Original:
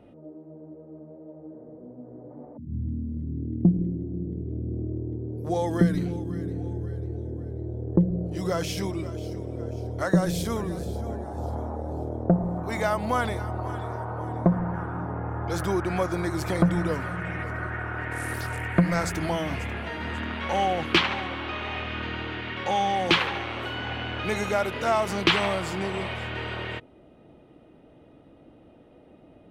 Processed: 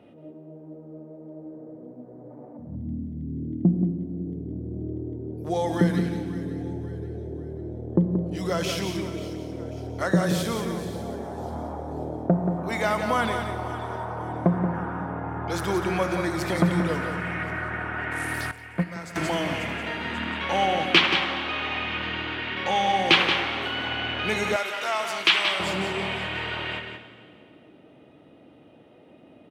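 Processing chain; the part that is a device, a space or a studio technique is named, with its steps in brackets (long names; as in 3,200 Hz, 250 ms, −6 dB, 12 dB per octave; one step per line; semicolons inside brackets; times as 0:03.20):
PA in a hall (high-pass filter 120 Hz 12 dB per octave; parametric band 2,800 Hz +5 dB 1.3 octaves; single-tap delay 179 ms −7.5 dB; convolution reverb RT60 2.0 s, pre-delay 25 ms, DRR 9.5 dB)
0:18.51–0:19.16: noise gate −17 dBFS, range −13 dB
0:24.56–0:25.60: high-pass filter 1,200 Hz 6 dB per octave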